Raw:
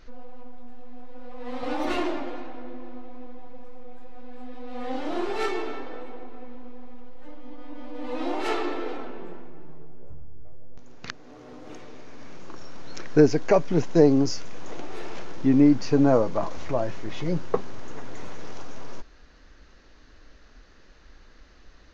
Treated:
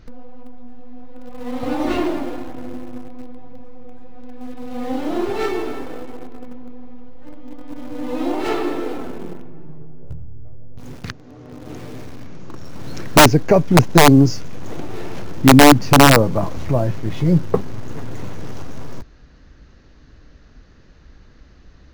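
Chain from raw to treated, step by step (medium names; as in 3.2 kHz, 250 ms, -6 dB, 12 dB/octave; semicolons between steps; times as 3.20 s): in parallel at -9 dB: word length cut 6-bit, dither none; on the sum: peaking EQ 110 Hz +14.5 dB 2.5 oct; integer overflow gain 1.5 dB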